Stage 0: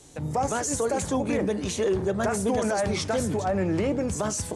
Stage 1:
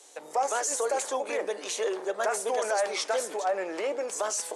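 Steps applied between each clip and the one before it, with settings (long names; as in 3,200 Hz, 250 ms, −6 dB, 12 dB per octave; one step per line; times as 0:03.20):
high-pass filter 460 Hz 24 dB per octave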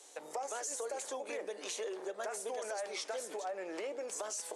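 dynamic equaliser 1,100 Hz, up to −4 dB, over −39 dBFS, Q 0.96
downward compressor 3 to 1, threshold −35 dBFS, peak gain reduction 8 dB
level −3.5 dB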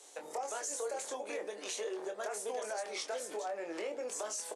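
double-tracking delay 24 ms −6.5 dB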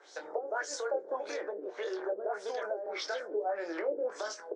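auto-filter low-pass sine 1.7 Hz 390–5,100 Hz
loudspeaker in its box 230–8,800 Hz, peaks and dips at 240 Hz −5 dB, 340 Hz +6 dB, 570 Hz +3 dB, 1,500 Hz +10 dB, 2,700 Hz −9 dB, 5,300 Hz +6 dB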